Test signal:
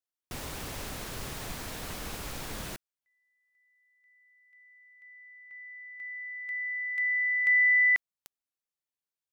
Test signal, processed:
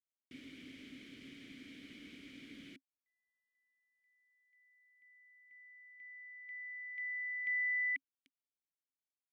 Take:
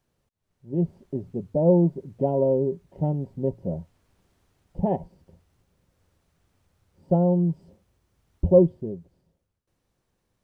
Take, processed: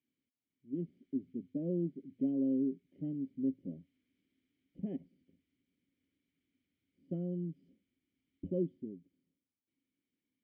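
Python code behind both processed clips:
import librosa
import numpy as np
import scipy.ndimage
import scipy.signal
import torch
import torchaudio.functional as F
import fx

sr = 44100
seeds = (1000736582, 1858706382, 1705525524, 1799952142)

y = fx.vowel_filter(x, sr, vowel='i')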